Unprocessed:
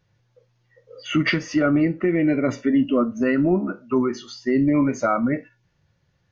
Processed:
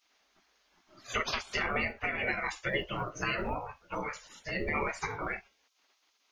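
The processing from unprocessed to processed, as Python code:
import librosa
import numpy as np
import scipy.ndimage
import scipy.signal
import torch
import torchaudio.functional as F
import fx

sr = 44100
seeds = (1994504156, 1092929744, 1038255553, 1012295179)

y = fx.spec_gate(x, sr, threshold_db=-25, keep='weak')
y = F.gain(torch.from_numpy(y), 7.5).numpy()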